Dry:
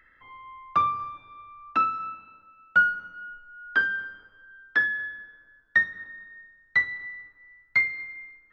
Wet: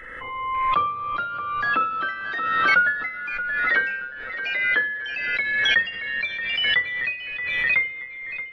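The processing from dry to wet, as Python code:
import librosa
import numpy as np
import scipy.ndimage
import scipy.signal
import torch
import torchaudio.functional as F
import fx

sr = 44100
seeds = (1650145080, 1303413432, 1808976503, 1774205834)

y = fx.freq_compress(x, sr, knee_hz=2600.0, ratio=1.5)
y = fx.hum_notches(y, sr, base_hz=60, count=2)
y = fx.small_body(y, sr, hz=(500.0, 3300.0), ring_ms=50, db=13)
y = fx.echo_pitch(y, sr, ms=545, semitones=3, count=3, db_per_echo=-6.0)
y = fx.echo_feedback(y, sr, ms=627, feedback_pct=43, wet_db=-11.5)
y = fx.pre_swell(y, sr, db_per_s=30.0)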